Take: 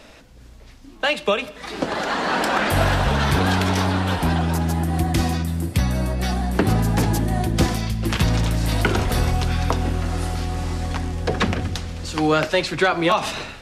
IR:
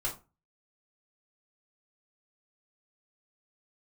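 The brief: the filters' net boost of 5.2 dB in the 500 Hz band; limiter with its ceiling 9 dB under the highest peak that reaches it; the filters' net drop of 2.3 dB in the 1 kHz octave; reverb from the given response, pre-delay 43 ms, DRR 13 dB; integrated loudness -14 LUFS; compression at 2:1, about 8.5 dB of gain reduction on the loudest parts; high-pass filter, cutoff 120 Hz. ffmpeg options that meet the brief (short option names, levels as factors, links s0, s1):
-filter_complex "[0:a]highpass=120,equalizer=f=500:t=o:g=8.5,equalizer=f=1000:t=o:g=-7,acompressor=threshold=0.0501:ratio=2,alimiter=limit=0.106:level=0:latency=1,asplit=2[s0][s1];[1:a]atrim=start_sample=2205,adelay=43[s2];[s1][s2]afir=irnorm=-1:irlink=0,volume=0.133[s3];[s0][s3]amix=inputs=2:normalize=0,volume=5.62"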